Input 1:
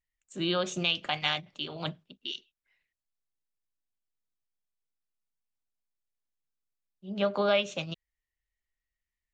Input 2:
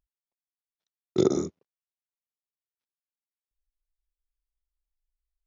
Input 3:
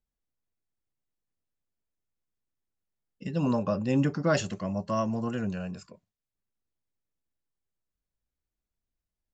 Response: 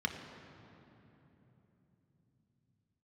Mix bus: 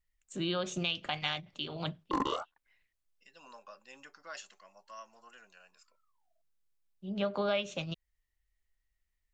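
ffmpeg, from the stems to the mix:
-filter_complex "[0:a]lowshelf=f=95:g=9.5,volume=1.5dB[a];[1:a]highshelf=f=5.1k:g=-11.5,volume=16.5dB,asoftclip=hard,volume=-16.5dB,aeval=exprs='val(0)*sin(2*PI*1000*n/s+1000*0.35/1.2*sin(2*PI*1.2*n/s))':c=same,adelay=950,volume=2.5dB[b];[2:a]highpass=1.2k,volume=-11.5dB[c];[a][b][c]amix=inputs=3:normalize=0,acompressor=threshold=-41dB:ratio=1.5"

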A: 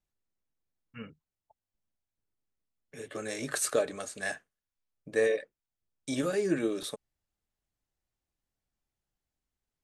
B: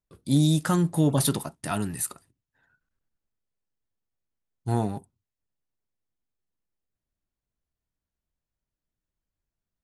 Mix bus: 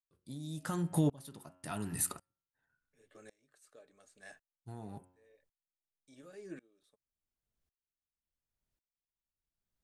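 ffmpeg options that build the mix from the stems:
-filter_complex "[0:a]volume=-16dB[a];[1:a]bandreject=f=91:t=h:w=4,bandreject=f=182:t=h:w=4,bandreject=f=273:t=h:w=4,bandreject=f=364:t=h:w=4,bandreject=f=455:t=h:w=4,bandreject=f=546:t=h:w=4,bandreject=f=637:t=h:w=4,bandreject=f=728:t=h:w=4,bandreject=f=819:t=h:w=4,bandreject=f=910:t=h:w=4,bandreject=f=1.001k:t=h:w=4,bandreject=f=1.092k:t=h:w=4,bandreject=f=1.183k:t=h:w=4,bandreject=f=1.274k:t=h:w=4,bandreject=f=1.365k:t=h:w=4,bandreject=f=1.456k:t=h:w=4,bandreject=f=1.547k:t=h:w=4,bandreject=f=1.638k:t=h:w=4,bandreject=f=1.729k:t=h:w=4,bandreject=f=1.82k:t=h:w=4,bandreject=f=1.911k:t=h:w=4,bandreject=f=2.002k:t=h:w=4,bandreject=f=2.093k:t=h:w=4,bandreject=f=2.184k:t=h:w=4,bandreject=f=2.275k:t=h:w=4,bandreject=f=2.366k:t=h:w=4,bandreject=f=2.457k:t=h:w=4,bandreject=f=2.548k:t=h:w=4,bandreject=f=2.639k:t=h:w=4,bandreject=f=2.73k:t=h:w=4,bandreject=f=2.821k:t=h:w=4,bandreject=f=2.912k:t=h:w=4,bandreject=f=3.003k:t=h:w=4,bandreject=f=3.094k:t=h:w=4,bandreject=f=3.185k:t=h:w=4,acompressor=threshold=-25dB:ratio=10,volume=2dB,asplit=2[b][c];[c]apad=whole_len=433887[d];[a][d]sidechaincompress=threshold=-54dB:ratio=16:attack=16:release=547[e];[e][b]amix=inputs=2:normalize=0,aeval=exprs='val(0)*pow(10,-27*if(lt(mod(-0.91*n/s,1),2*abs(-0.91)/1000),1-mod(-0.91*n/s,1)/(2*abs(-0.91)/1000),(mod(-0.91*n/s,1)-2*abs(-0.91)/1000)/(1-2*abs(-0.91)/1000))/20)':c=same"

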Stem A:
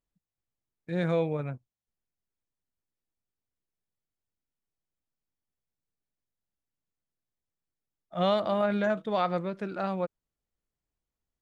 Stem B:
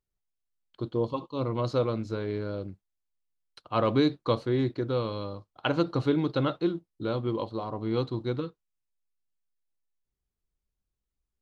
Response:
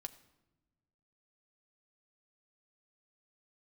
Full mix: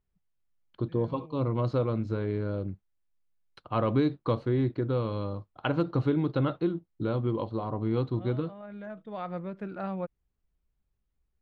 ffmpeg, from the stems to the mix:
-filter_complex "[0:a]volume=-4.5dB[a];[1:a]asoftclip=type=hard:threshold=-13.5dB,acompressor=threshold=-36dB:ratio=1.5,volume=2.5dB,asplit=2[b][c];[c]apad=whole_len=503228[d];[a][d]sidechaincompress=threshold=-49dB:ratio=4:attack=48:release=833[e];[e][b]amix=inputs=2:normalize=0,bass=f=250:g=5,treble=f=4k:g=-14"

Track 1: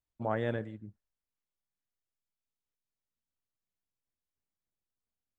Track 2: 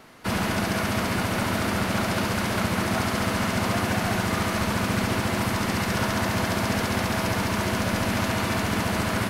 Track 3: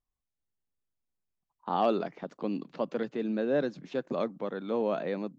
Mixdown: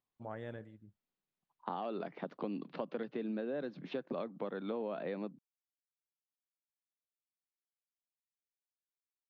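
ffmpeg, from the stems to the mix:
-filter_complex "[0:a]volume=-11.5dB[a];[2:a]lowpass=f=4.2k:w=0.5412,lowpass=f=4.2k:w=1.3066,volume=1.5dB,highpass=f=130:w=0.5412,highpass=f=130:w=1.3066,alimiter=limit=-19.5dB:level=0:latency=1:release=149,volume=0dB[b];[a][b]amix=inputs=2:normalize=0,acompressor=threshold=-36dB:ratio=5"

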